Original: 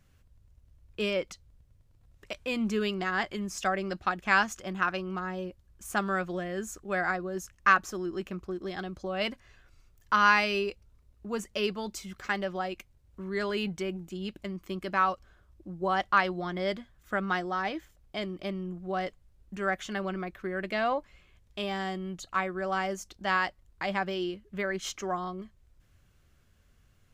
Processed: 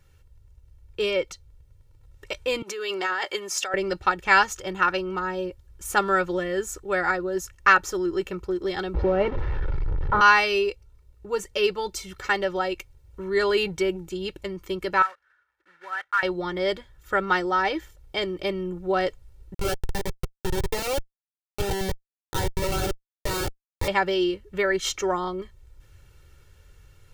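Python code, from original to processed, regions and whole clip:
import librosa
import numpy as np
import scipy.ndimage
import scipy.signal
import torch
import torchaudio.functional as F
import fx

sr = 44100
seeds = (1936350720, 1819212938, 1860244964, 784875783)

y = fx.chain(x, sr, fx.over_compress(threshold_db=-33.0, ratio=-1.0),
    fx.highpass(hz=480.0, slope=12), at=(2.62, 3.74))
y = fx.chain(y, sr, fx.delta_mod(bps=32000, step_db=-34.0),
    fx.lowpass(hz=1300.0, slope=12),
    fx.low_shelf(hz=350.0, db=8.5), at=(8.94, 10.21))
y = fx.chain(y, sr, fx.block_float(bits=3),
    fx.bandpass_q(hz=1600.0, q=4.4), at=(15.02, 16.23))
y = fx.chain(y, sr, fx.bandpass_edges(low_hz=190.0, high_hz=7600.0),
    fx.schmitt(flips_db=-30.5),
    fx.notch_cascade(direction='rising', hz=1.6), at=(19.54, 23.88))
y = y + 0.75 * np.pad(y, (int(2.2 * sr / 1000.0), 0))[:len(y)]
y = fx.rider(y, sr, range_db=3, speed_s=2.0)
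y = y * 10.0 ** (5.0 / 20.0)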